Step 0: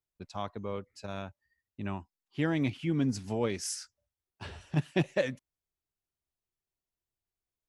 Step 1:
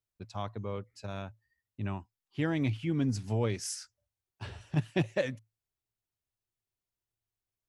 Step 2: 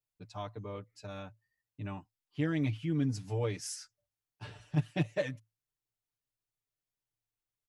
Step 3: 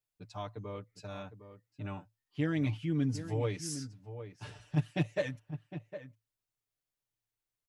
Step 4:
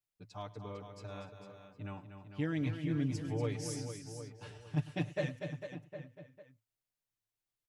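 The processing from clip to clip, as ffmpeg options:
ffmpeg -i in.wav -af "equalizer=frequency=110:width_type=o:width=0.25:gain=12,volume=-1.5dB" out.wav
ffmpeg -i in.wav -af "aecho=1:1:6.7:0.99,volume=-6dB" out.wav
ffmpeg -i in.wav -filter_complex "[0:a]asplit=2[link_01][link_02];[link_02]adelay=758,volume=-11dB,highshelf=frequency=4000:gain=-17.1[link_03];[link_01][link_03]amix=inputs=2:normalize=0" out.wav
ffmpeg -i in.wav -af "aecho=1:1:105|241|292|451:0.106|0.355|0.1|0.335,volume=-3.5dB" out.wav

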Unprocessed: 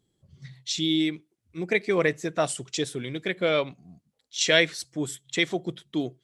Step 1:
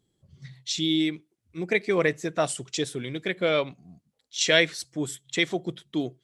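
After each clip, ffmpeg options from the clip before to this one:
ffmpeg -i in.wav -af anull out.wav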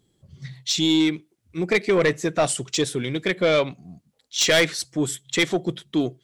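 ffmpeg -i in.wav -af "asoftclip=type=tanh:threshold=-19dB,volume=7dB" out.wav

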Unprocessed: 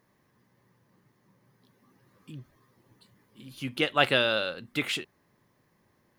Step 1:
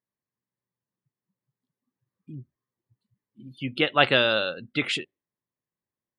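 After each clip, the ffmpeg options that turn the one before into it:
ffmpeg -i in.wav -af "afftdn=noise_reduction=30:noise_floor=-43,volume=3.5dB" out.wav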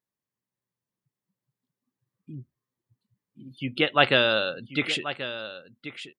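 ffmpeg -i in.wav -af "aecho=1:1:1083:0.237" out.wav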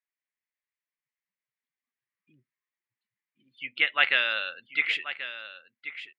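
ffmpeg -i in.wav -af "bandpass=frequency=2100:width_type=q:width=3.1:csg=0,volume=5.5dB" out.wav

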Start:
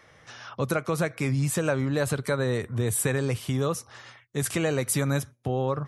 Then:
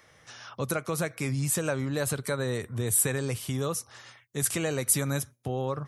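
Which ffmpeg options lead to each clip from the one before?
ffmpeg -i in.wav -af "highshelf=frequency=5700:gain=10.5,volume=-4dB" out.wav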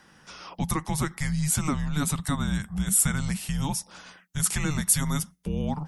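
ffmpeg -i in.wav -af "afreqshift=-300,volume=2.5dB" out.wav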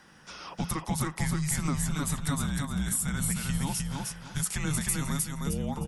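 ffmpeg -i in.wav -af "acompressor=threshold=-27dB:ratio=6,aecho=1:1:308|616|924|1232:0.708|0.184|0.0479|0.0124" out.wav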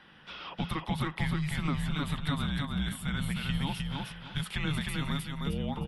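ffmpeg -i in.wav -af "highshelf=frequency=4700:width_type=q:width=3:gain=-12.5,volume=-1.5dB" out.wav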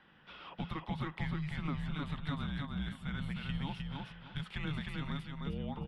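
ffmpeg -i in.wav -af "adynamicsmooth=sensitivity=1.5:basefreq=4200,volume=-6dB" out.wav

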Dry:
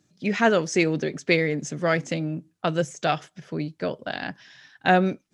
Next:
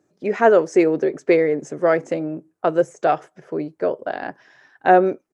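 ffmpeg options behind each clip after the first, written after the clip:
ffmpeg -i in.wav -af "firequalizer=gain_entry='entry(190,0);entry(370,15);entry(3400,-6);entry(8200,2)':delay=0.05:min_phase=1,volume=-6dB" out.wav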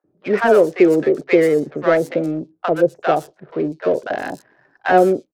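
ffmpeg -i in.wav -filter_complex "[0:a]asplit=2[link_01][link_02];[link_02]alimiter=limit=-10dB:level=0:latency=1:release=226,volume=-2.5dB[link_03];[link_01][link_03]amix=inputs=2:normalize=0,adynamicsmooth=sensitivity=4.5:basefreq=730,acrossover=split=800|5000[link_04][link_05][link_06];[link_04]adelay=40[link_07];[link_06]adelay=120[link_08];[link_07][link_05][link_08]amix=inputs=3:normalize=0" out.wav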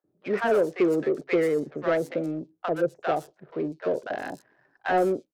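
ffmpeg -i in.wav -af "asoftclip=type=tanh:threshold=-6dB,volume=-8dB" out.wav

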